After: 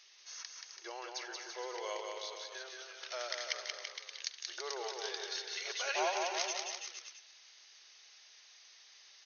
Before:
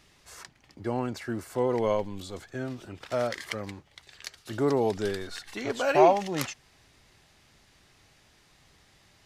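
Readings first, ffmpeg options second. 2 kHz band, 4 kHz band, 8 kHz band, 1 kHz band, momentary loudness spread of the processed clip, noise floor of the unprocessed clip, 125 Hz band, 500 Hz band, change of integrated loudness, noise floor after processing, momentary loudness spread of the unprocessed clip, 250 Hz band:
-4.0 dB, +2.5 dB, +3.0 dB, -11.0 dB, 22 LU, -62 dBFS, under -40 dB, -15.0 dB, -11.0 dB, -60 dBFS, 21 LU, -24.0 dB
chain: -filter_complex "[0:a]aderivative,aecho=1:1:180|333|463|573.6|667.6:0.631|0.398|0.251|0.158|0.1,asplit=2[s0][s1];[s1]acompressor=threshold=0.00316:ratio=6,volume=0.708[s2];[s0][s2]amix=inputs=2:normalize=0,afftfilt=real='re*between(b*sr/4096,340,6600)':imag='im*between(b*sr/4096,340,6600)':win_size=4096:overlap=0.75,volume=1.5"

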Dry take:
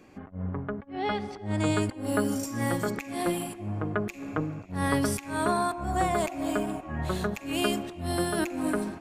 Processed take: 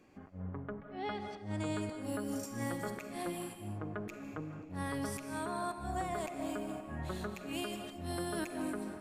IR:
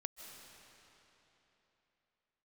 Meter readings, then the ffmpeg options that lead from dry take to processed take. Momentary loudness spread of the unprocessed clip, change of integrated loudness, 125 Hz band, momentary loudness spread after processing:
7 LU, -10.0 dB, -10.0 dB, 6 LU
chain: -filter_complex "[0:a]alimiter=limit=0.126:level=0:latency=1:release=194[s0];[1:a]atrim=start_sample=2205,afade=t=out:st=0.3:d=0.01,atrim=end_sample=13671[s1];[s0][s1]afir=irnorm=-1:irlink=0,volume=0.562"

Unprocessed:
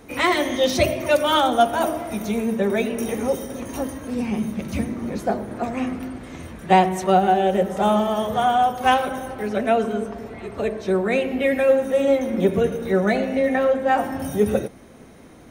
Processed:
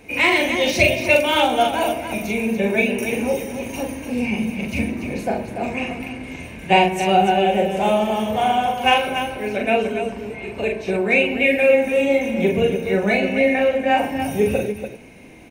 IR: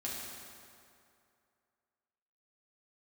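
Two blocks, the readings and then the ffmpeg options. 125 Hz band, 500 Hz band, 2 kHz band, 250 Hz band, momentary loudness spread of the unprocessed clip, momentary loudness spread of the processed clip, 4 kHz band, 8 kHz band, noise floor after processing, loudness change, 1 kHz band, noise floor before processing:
+0.5 dB, +1.0 dB, +7.0 dB, +1.0 dB, 10 LU, 12 LU, +4.5 dB, +1.5 dB, -36 dBFS, +2.0 dB, +0.5 dB, -45 dBFS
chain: -filter_complex "[0:a]superequalizer=10b=0.447:12b=3.55,asplit=2[s0][s1];[s1]aecho=0:1:40.82|288.6:0.708|0.398[s2];[s0][s2]amix=inputs=2:normalize=0,volume=0.891"

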